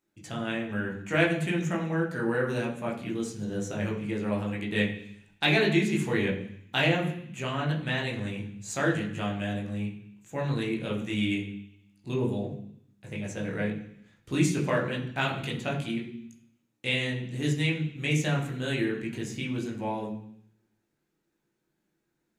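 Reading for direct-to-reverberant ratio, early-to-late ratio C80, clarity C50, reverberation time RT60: -2.5 dB, 10.5 dB, 7.5 dB, 0.65 s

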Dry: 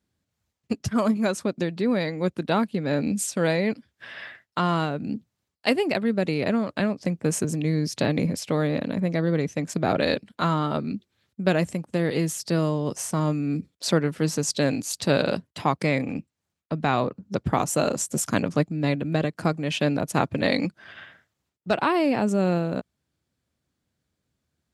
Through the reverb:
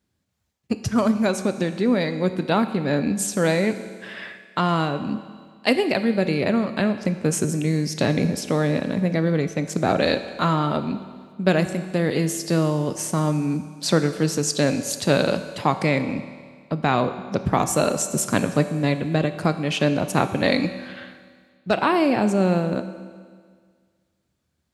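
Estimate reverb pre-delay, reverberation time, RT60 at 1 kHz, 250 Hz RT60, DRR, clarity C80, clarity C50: 5 ms, 1.8 s, 1.8 s, 1.8 s, 9.0 dB, 12.0 dB, 11.0 dB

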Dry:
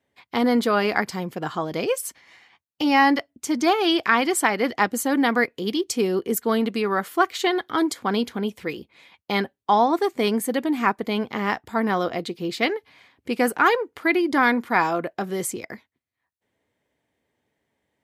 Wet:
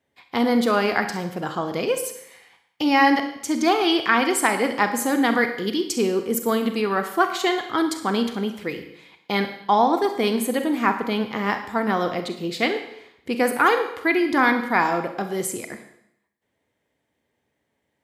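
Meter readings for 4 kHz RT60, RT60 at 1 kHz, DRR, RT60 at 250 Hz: 0.75 s, 0.75 s, 7.0 dB, 0.75 s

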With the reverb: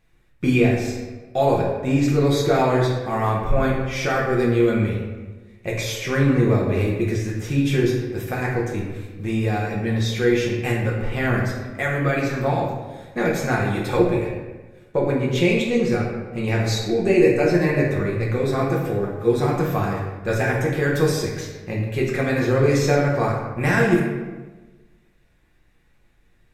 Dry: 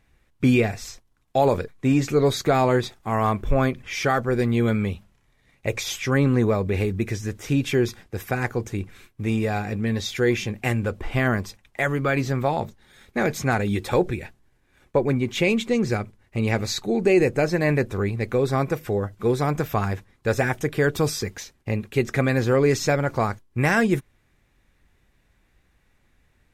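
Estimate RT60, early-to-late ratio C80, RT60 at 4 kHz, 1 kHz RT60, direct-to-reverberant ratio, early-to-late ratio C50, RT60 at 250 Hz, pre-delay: 1.3 s, 4.5 dB, 0.80 s, 1.2 s, -3.5 dB, 2.5 dB, 1.4 s, 5 ms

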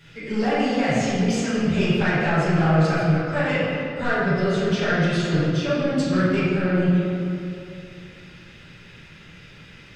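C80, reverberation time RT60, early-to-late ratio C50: 0.0 dB, 2.6 s, -2.5 dB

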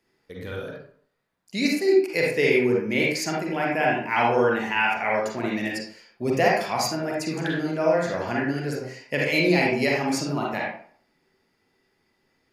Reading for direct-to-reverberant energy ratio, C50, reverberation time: -3.0 dB, -0.5 dB, 0.55 s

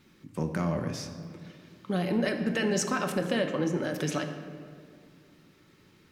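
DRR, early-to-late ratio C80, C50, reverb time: 5.0 dB, 9.0 dB, 7.5 dB, 2.1 s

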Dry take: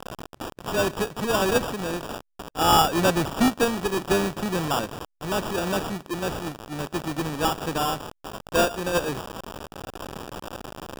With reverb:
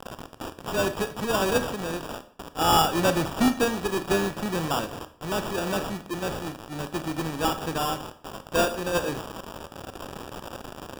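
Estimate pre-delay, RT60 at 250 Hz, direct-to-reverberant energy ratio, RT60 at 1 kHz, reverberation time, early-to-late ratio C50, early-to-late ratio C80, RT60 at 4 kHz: 24 ms, 0.55 s, 10.5 dB, 0.60 s, 0.55 s, 13.5 dB, 17.5 dB, 0.45 s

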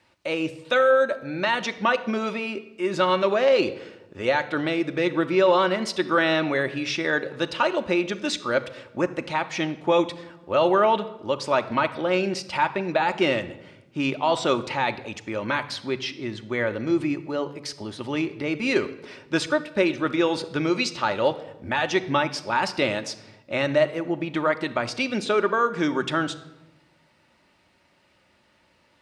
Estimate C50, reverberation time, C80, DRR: 14.5 dB, 1.0 s, 17.0 dB, 8.5 dB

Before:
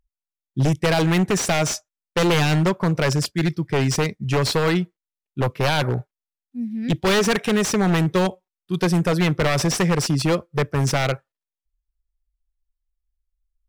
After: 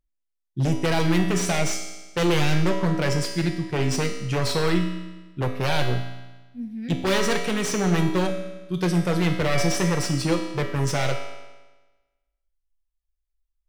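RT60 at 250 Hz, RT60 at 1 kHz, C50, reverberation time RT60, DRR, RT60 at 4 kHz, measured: 1.2 s, 1.2 s, 5.5 dB, 1.2 s, 2.0 dB, 1.1 s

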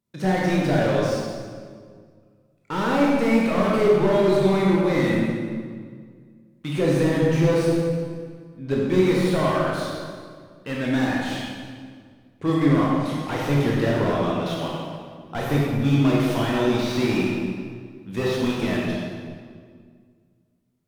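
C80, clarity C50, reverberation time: 0.0 dB, -2.0 dB, 1.9 s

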